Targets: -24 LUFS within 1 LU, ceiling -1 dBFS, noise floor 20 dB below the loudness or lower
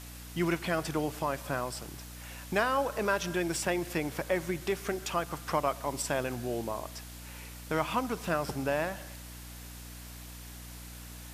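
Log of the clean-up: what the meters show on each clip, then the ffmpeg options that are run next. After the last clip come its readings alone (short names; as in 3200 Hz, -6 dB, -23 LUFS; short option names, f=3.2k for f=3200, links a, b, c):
hum 60 Hz; harmonics up to 300 Hz; hum level -44 dBFS; noise floor -46 dBFS; noise floor target -53 dBFS; loudness -32.5 LUFS; peak -13.0 dBFS; loudness target -24.0 LUFS
-> -af "bandreject=f=60:t=h:w=4,bandreject=f=120:t=h:w=4,bandreject=f=180:t=h:w=4,bandreject=f=240:t=h:w=4,bandreject=f=300:t=h:w=4"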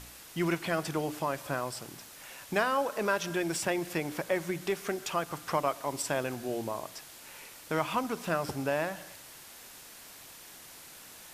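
hum none; noise floor -50 dBFS; noise floor target -53 dBFS
-> -af "afftdn=nr=6:nf=-50"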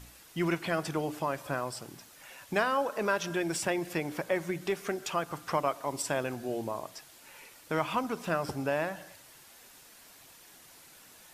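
noise floor -55 dBFS; loudness -32.5 LUFS; peak -13.0 dBFS; loudness target -24.0 LUFS
-> -af "volume=8.5dB"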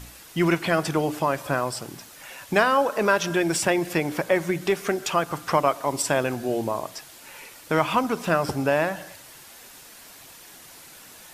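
loudness -24.0 LUFS; peak -4.5 dBFS; noise floor -47 dBFS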